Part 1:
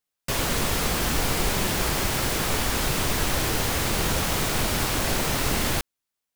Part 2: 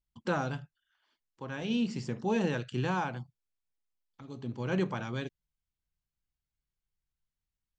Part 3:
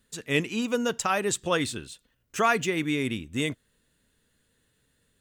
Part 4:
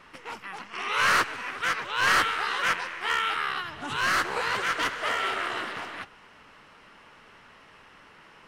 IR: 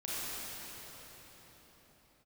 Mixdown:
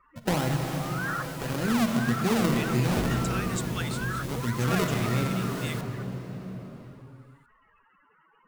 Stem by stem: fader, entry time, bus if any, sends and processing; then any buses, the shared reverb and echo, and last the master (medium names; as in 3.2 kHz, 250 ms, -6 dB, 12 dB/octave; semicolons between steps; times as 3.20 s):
-17.0 dB, 0.00 s, no send, spectral gate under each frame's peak -15 dB weak
+3.0 dB, 0.00 s, send -5.5 dB, bass shelf 200 Hz +8 dB; decimation with a swept rate 37×, swing 100% 1.7 Hz
-6.0 dB, 2.25 s, no send, steep high-pass 1.2 kHz
-9.5 dB, 0.00 s, no send, spectral contrast enhancement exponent 3.6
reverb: on, pre-delay 29 ms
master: compression 2:1, threshold -24 dBFS, peak gain reduction 5.5 dB